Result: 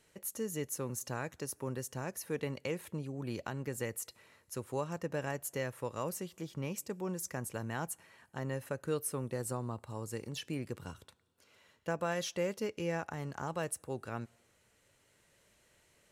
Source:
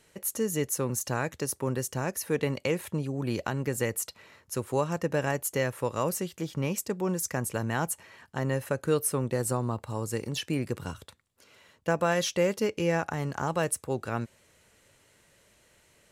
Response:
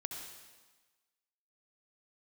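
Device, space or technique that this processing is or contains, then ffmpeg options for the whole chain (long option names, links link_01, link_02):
ducked reverb: -filter_complex "[0:a]asplit=3[link_01][link_02][link_03];[1:a]atrim=start_sample=2205[link_04];[link_02][link_04]afir=irnorm=-1:irlink=0[link_05];[link_03]apad=whole_len=710756[link_06];[link_05][link_06]sidechaincompress=threshold=-45dB:ratio=16:attack=16:release=842,volume=-5.5dB[link_07];[link_01][link_07]amix=inputs=2:normalize=0,volume=-9dB"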